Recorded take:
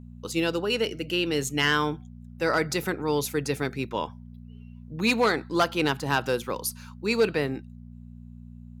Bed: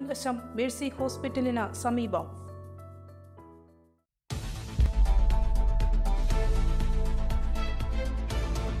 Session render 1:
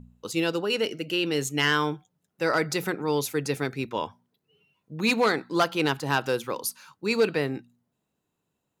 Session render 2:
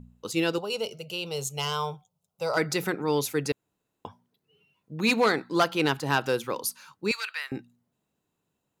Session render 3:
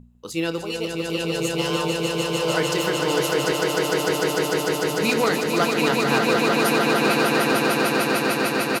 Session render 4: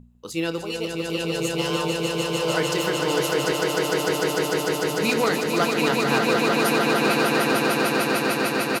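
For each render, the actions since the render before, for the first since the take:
de-hum 60 Hz, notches 4
0.58–2.57 s: static phaser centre 730 Hz, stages 4; 3.52–4.05 s: room tone; 7.11–7.52 s: high-pass 1.2 kHz 24 dB/octave
doubling 30 ms -12.5 dB; on a send: echo with a slow build-up 150 ms, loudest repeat 8, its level -4 dB
trim -1 dB

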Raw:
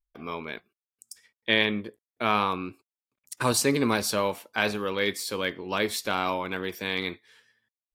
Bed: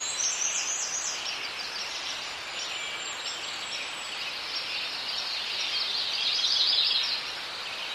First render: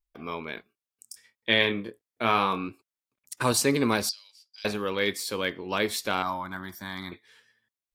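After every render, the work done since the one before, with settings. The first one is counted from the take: 0.55–2.68 s: doubling 26 ms -7.5 dB; 4.09–4.65 s: ladder band-pass 5 kHz, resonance 90%; 6.22–7.12 s: static phaser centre 1.1 kHz, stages 4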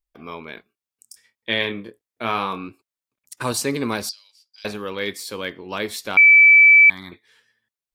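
6.17–6.90 s: bleep 2.31 kHz -7 dBFS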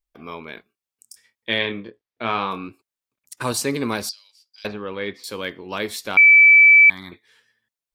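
1.58–2.51 s: low-pass 5.1 kHz 24 dB/octave; 4.67–5.24 s: distance through air 270 m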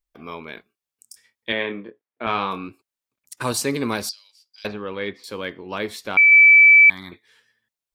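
1.52–2.27 s: band-pass 180–2200 Hz; 5.09–6.32 s: treble shelf 4 kHz -8 dB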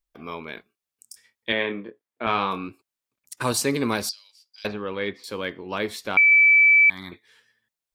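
compression 4:1, threshold -14 dBFS, peak gain reduction 4.5 dB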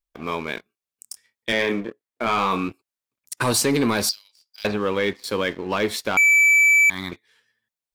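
waveshaping leveller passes 2; peak limiter -13 dBFS, peak gain reduction 4.5 dB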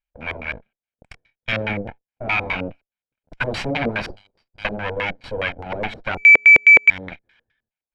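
comb filter that takes the minimum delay 1.3 ms; LFO low-pass square 4.8 Hz 470–2500 Hz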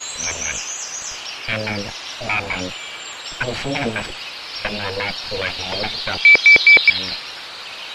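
add bed +2.5 dB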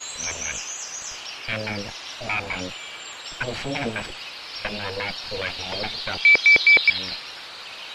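trim -5 dB

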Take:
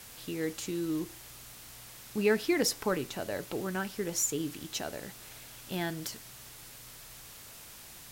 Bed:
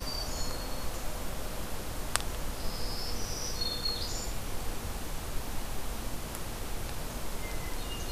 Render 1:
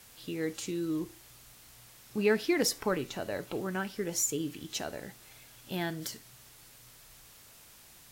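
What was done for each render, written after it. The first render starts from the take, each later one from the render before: noise print and reduce 6 dB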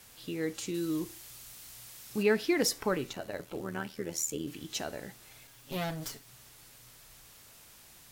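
0.74–2.23 s: treble shelf 2.8 kHz +7.5 dB; 3.13–4.48 s: AM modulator 79 Hz, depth 60%; 5.47–6.28 s: comb filter that takes the minimum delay 7.3 ms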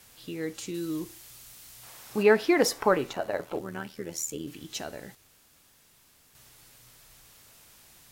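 1.83–3.59 s: peaking EQ 840 Hz +11 dB 2.4 oct; 5.15–6.35 s: room tone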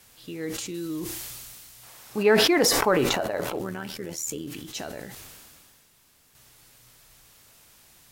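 decay stretcher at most 25 dB/s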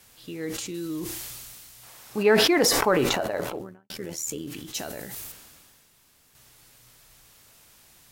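3.37–3.90 s: studio fade out; 4.74–5.32 s: treble shelf 8.2 kHz +11.5 dB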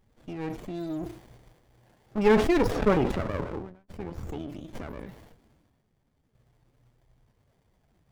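loudest bins only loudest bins 32; sliding maximum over 33 samples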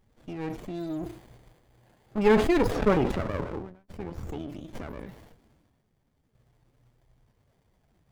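0.89–2.73 s: band-stop 5.6 kHz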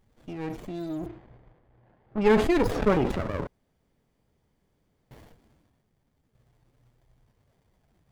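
1.06–2.58 s: level-controlled noise filter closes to 1.7 kHz, open at -18 dBFS; 3.47–5.11 s: room tone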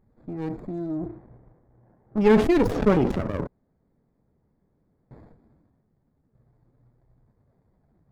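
local Wiener filter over 15 samples; peaking EQ 210 Hz +5 dB 2.1 oct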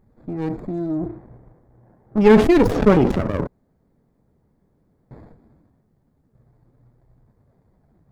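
trim +5.5 dB

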